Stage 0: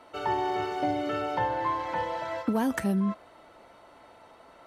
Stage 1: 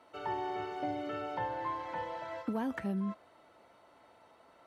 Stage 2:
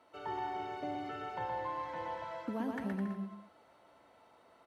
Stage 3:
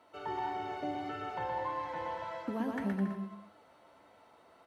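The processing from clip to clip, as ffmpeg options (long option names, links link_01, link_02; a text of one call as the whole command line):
ffmpeg -i in.wav -filter_complex "[0:a]highpass=63,acrossover=split=3900[link_01][link_02];[link_02]acompressor=threshold=-57dB:ratio=4:attack=1:release=60[link_03];[link_01][link_03]amix=inputs=2:normalize=0,volume=-8dB" out.wav
ffmpeg -i in.wav -af "aecho=1:1:120|210|277.5|328.1|366.1:0.631|0.398|0.251|0.158|0.1,volume=-4dB" out.wav
ffmpeg -i in.wav -af "flanger=delay=9.6:depth=3.7:regen=68:speed=1.7:shape=sinusoidal,volume=6.5dB" out.wav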